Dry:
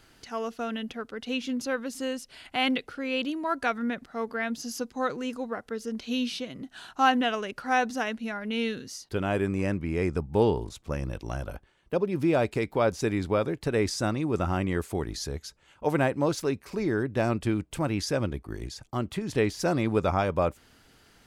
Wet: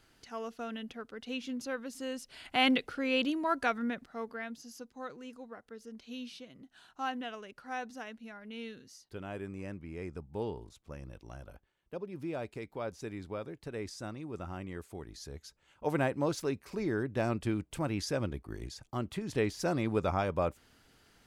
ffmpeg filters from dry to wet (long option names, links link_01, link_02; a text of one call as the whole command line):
ffmpeg -i in.wav -af "volume=8dB,afade=type=in:start_time=2.05:duration=0.53:silence=0.446684,afade=type=out:start_time=3.24:duration=0.92:silence=0.473151,afade=type=out:start_time=4.16:duration=0.48:silence=0.446684,afade=type=in:start_time=15.12:duration=0.83:silence=0.375837" out.wav